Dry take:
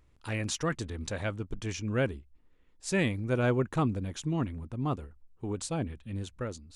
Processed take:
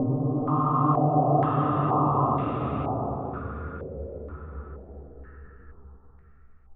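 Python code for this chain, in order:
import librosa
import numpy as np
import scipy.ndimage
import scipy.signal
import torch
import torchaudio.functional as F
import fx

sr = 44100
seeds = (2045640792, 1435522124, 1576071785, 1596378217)

y = fx.tape_stop_end(x, sr, length_s=1.74)
y = fx.paulstretch(y, sr, seeds[0], factor=17.0, window_s=0.25, from_s=4.8)
y = fx.filter_held_lowpass(y, sr, hz=2.1, low_hz=570.0, high_hz=2100.0)
y = y * librosa.db_to_amplitude(4.5)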